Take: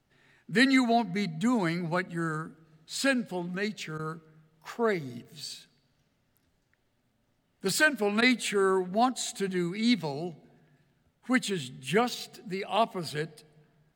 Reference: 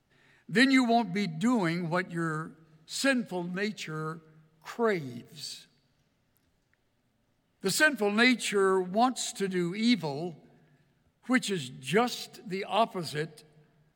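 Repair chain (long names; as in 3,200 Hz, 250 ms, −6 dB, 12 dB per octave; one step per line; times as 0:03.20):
repair the gap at 0:03.98/0:08.21, 11 ms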